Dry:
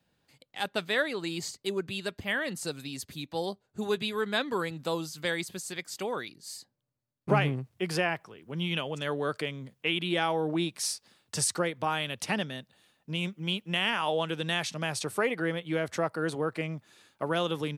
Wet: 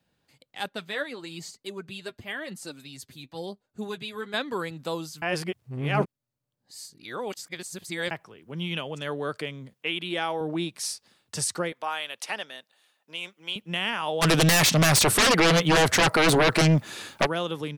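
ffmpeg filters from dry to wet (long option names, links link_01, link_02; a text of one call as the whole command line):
ffmpeg -i in.wav -filter_complex "[0:a]asettb=1/sr,asplit=3[link_01][link_02][link_03];[link_01]atrim=end=0.694[link_04];[link_02]atrim=start=0.69:end=4.34,asetpts=PTS-STARTPTS,afade=type=in:duration=0.004:curve=qsin,afade=type=out:start_time=3.646:duration=0.004:curve=qsin,flanger=delay=3.2:depth=5.6:regen=32:speed=1:shape=triangular[link_05];[link_03]atrim=start=4.336[link_06];[link_04][link_05]acrossfade=duration=0.004:curve1=hsin:curve2=qsin[link_07];[link_07][link_06]acrossfade=duration=0.004:curve1=qsin:curve2=hsin,asettb=1/sr,asplit=3[link_08][link_09][link_10];[link_08]atrim=end=9.734[link_11];[link_09]atrim=start=9.73:end=10.41,asetpts=PTS-STARTPTS,afade=type=in:duration=0.004:curve=qsin,afade=type=out:start_time=0.676:duration=0.004:curve=qsin,highpass=frequency=260:poles=1[link_12];[link_10]atrim=start=10.406[link_13];[link_11][link_12]acrossfade=duration=0.004:curve1=hsin:curve2=qsin[link_14];[link_14][link_13]acrossfade=duration=0.004:curve1=qsin:curve2=hsin,asettb=1/sr,asplit=3[link_15][link_16][link_17];[link_15]atrim=end=11.724[link_18];[link_16]atrim=start=11.72:end=13.56,asetpts=PTS-STARTPTS,afade=type=in:duration=0.004:curve=qsin,afade=type=out:start_time=1.836:duration=0.004:curve=qsin,highpass=580[link_19];[link_17]atrim=start=13.556[link_20];[link_18][link_19]acrossfade=duration=0.004:curve1=hsin:curve2=qsin[link_21];[link_21][link_20]acrossfade=duration=0.004:curve1=qsin:curve2=hsin,asplit=3[link_22][link_23][link_24];[link_22]afade=type=out:start_time=14.21:duration=0.02[link_25];[link_23]aeval=exprs='0.168*sin(PI/2*6.31*val(0)/0.168)':channel_layout=same,afade=type=in:start_time=14.21:duration=0.02,afade=type=out:start_time=17.25:duration=0.02[link_26];[link_24]afade=type=in:start_time=17.25:duration=0.02[link_27];[link_25][link_26][link_27]amix=inputs=3:normalize=0,asplit=3[link_28][link_29][link_30];[link_28]atrim=end=5.222[link_31];[link_29]atrim=start=5.218:end=8.112,asetpts=PTS-STARTPTS,areverse[link_32];[link_30]atrim=start=8.108[link_33];[link_31][link_32]acrossfade=duration=0.004:curve1=hsin:curve2=hsin[link_34];[link_34][link_33]acrossfade=duration=0.004:curve1=hsin:curve2=hsin" out.wav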